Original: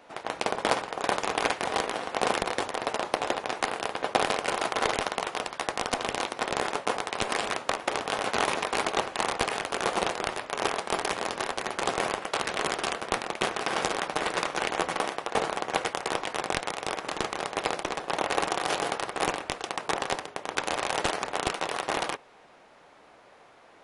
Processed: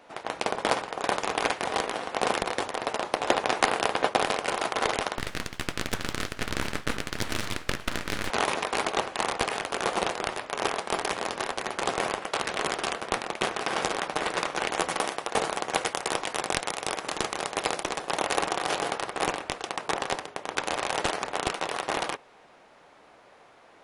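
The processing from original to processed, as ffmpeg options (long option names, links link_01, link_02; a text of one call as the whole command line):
ffmpeg -i in.wav -filter_complex "[0:a]asettb=1/sr,asplit=3[link_01][link_02][link_03];[link_01]atrim=end=5.184[link_04];[link_02]atrim=start=5.18:end=8.3,asetpts=PTS-STARTPTS,afade=type=in:duration=0.004:curve=qsin,afade=type=out:start_time=3.116:duration=0.004:curve=qsin,aeval=exprs='abs(val(0))':channel_layout=same[link_05];[link_03]atrim=start=8.296[link_06];[link_04][link_05]acrossfade=duration=0.004:curve1=hsin:curve2=qsin[link_07];[link_07][link_06]acrossfade=duration=0.004:curve1=qsin:curve2=hsin,asettb=1/sr,asplit=3[link_08][link_09][link_10];[link_08]atrim=end=14.724[link_11];[link_09]atrim=start=14.72:end=18.39,asetpts=PTS-STARTPTS,afade=type=in:duration=0.004:curve=qsin,afade=type=out:start_time=3.666:duration=0.004:curve=qsin,highshelf=frequency=6000:gain=8.5[link_12];[link_10]atrim=start=18.386[link_13];[link_11][link_12]acrossfade=duration=0.004:curve1=hsin:curve2=qsin[link_14];[link_14][link_13]acrossfade=duration=0.004:curve1=qsin:curve2=hsin,asplit=3[link_15][link_16][link_17];[link_15]atrim=end=3.282[link_18];[link_16]atrim=start=3.278:end=4.092,asetpts=PTS-STARTPTS,volume=5.5dB[link_19];[link_17]atrim=start=4.088[link_20];[link_18][link_19]acrossfade=duration=0.004:curve1=hsin:curve2=hsin[link_21];[link_21][link_20]acrossfade=duration=0.004:curve1=hsin:curve2=hsin" out.wav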